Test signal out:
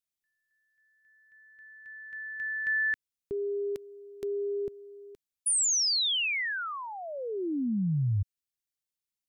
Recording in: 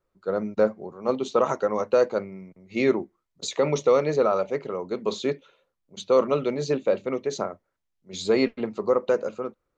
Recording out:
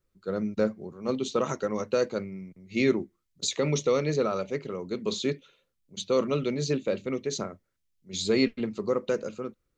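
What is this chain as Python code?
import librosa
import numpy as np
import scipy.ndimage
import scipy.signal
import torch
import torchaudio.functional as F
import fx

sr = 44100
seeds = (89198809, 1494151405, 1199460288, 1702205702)

y = fx.peak_eq(x, sr, hz=800.0, db=-14.0, octaves=2.1)
y = y * librosa.db_to_amplitude(4.0)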